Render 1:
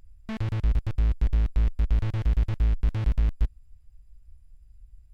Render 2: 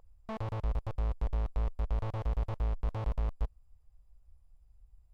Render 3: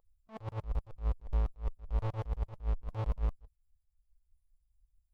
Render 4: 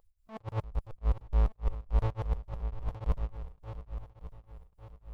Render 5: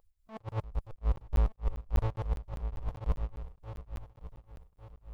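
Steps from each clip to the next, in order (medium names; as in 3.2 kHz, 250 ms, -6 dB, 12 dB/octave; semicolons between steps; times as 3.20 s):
high-order bell 730 Hz +12 dB; trim -9 dB
expander on every frequency bin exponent 1.5; attacks held to a fixed rise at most 250 dB/s; trim +3.5 dB
shuffle delay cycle 1150 ms, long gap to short 1.5:1, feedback 39%, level -13 dB; tremolo of two beating tones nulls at 3.5 Hz; trim +6 dB
crackling interface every 0.20 s, samples 512, zero, from 0.96 s; trim -1 dB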